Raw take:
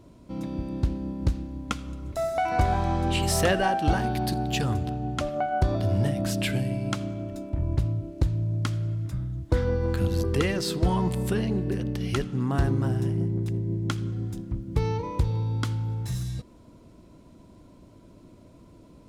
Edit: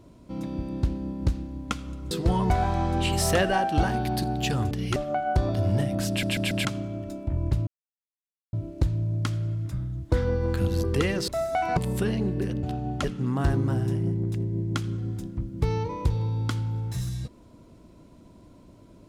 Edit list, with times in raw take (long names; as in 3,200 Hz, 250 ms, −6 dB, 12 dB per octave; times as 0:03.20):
0:02.11–0:02.60: swap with 0:10.68–0:11.07
0:04.81–0:05.22: swap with 0:11.93–0:12.18
0:06.35: stutter in place 0.14 s, 4 plays
0:07.93: splice in silence 0.86 s